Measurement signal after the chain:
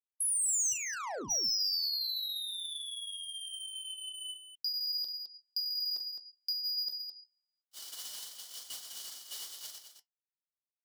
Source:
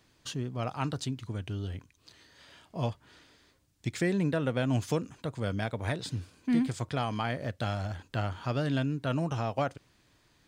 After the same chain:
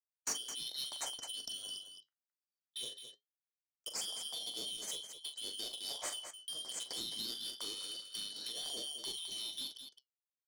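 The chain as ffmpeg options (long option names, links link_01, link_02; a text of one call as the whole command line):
ffmpeg -i in.wav -filter_complex "[0:a]afftfilt=real='real(if(lt(b,272),68*(eq(floor(b/68),0)*2+eq(floor(b/68),1)*3+eq(floor(b/68),2)*0+eq(floor(b/68),3)*1)+mod(b,68),b),0)':imag='imag(if(lt(b,272),68*(eq(floor(b/68),0)*2+eq(floor(b/68),1)*3+eq(floor(b/68),2)*0+eq(floor(b/68),3)*1)+mod(b,68),b),0)':win_size=2048:overlap=0.75,anlmdn=0.01,agate=range=-42dB:threshold=-42dB:ratio=16:detection=peak,acrossover=split=4400[link_01][link_02];[link_02]acompressor=threshold=-38dB:ratio=4:attack=1:release=60[link_03];[link_01][link_03]amix=inputs=2:normalize=0,equalizer=frequency=62:width_type=o:width=1.8:gain=-11,acrossover=split=760[link_04][link_05];[link_05]acompressor=threshold=-40dB:ratio=12[link_06];[link_04][link_06]amix=inputs=2:normalize=0,flanger=delay=4:depth=6.6:regen=-68:speed=0.23:shape=sinusoidal,asplit=2[link_07][link_08];[link_08]highpass=frequency=720:poles=1,volume=15dB,asoftclip=type=tanh:threshold=-32.5dB[link_09];[link_07][link_09]amix=inputs=2:normalize=0,lowpass=frequency=2300:poles=1,volume=-6dB,aecho=1:1:40.82|212.8:0.355|0.355,aexciter=amount=4.7:drive=8.5:freq=4500" out.wav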